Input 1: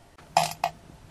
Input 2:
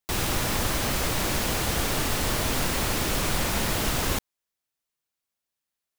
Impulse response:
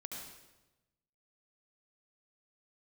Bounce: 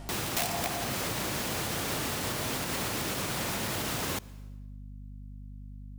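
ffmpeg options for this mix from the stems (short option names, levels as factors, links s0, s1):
-filter_complex "[0:a]volume=1.41,asplit=2[s0][s1];[s1]volume=0.668[s2];[1:a]highpass=f=90:w=0.5412,highpass=f=90:w=1.3066,aeval=exprs='val(0)+0.00708*(sin(2*PI*50*n/s)+sin(2*PI*2*50*n/s)/2+sin(2*PI*3*50*n/s)/3+sin(2*PI*4*50*n/s)/4+sin(2*PI*5*50*n/s)/5)':c=same,volume=1,asplit=2[s3][s4];[s4]volume=0.119[s5];[2:a]atrim=start_sample=2205[s6];[s2][s5]amix=inputs=2:normalize=0[s7];[s7][s6]afir=irnorm=-1:irlink=0[s8];[s0][s3][s8]amix=inputs=3:normalize=0,aeval=exprs='(mod(4.22*val(0)+1,2)-1)/4.22':c=same,alimiter=limit=0.075:level=0:latency=1:release=254"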